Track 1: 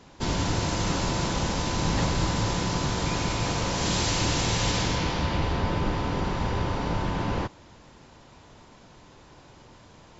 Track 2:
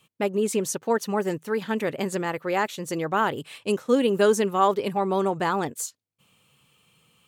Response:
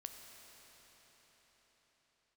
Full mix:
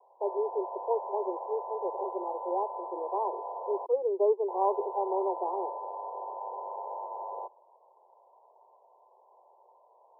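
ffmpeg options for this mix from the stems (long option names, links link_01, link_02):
-filter_complex "[0:a]highpass=frequency=570:width=0.5412,highpass=frequency=570:width=1.3066,volume=-2.5dB,asplit=3[link_01][link_02][link_03];[link_01]atrim=end=3.86,asetpts=PTS-STARTPTS,afade=type=out:start_time=3.856:duration=0.004:curve=hsin[link_04];[link_02]atrim=start=3.86:end=4.48,asetpts=PTS-STARTPTS,volume=0[link_05];[link_03]atrim=start=4.48,asetpts=PTS-STARTPTS,afade=type=in:duration=0.004:curve=hsin[link_06];[link_04][link_05][link_06]concat=n=3:v=0:a=1[link_07];[1:a]aeval=exprs='sgn(val(0))*max(abs(val(0))-0.00398,0)':channel_layout=same,volume=-5dB[link_08];[link_07][link_08]amix=inputs=2:normalize=0,asuperpass=centerf=600:order=20:qfactor=0.9"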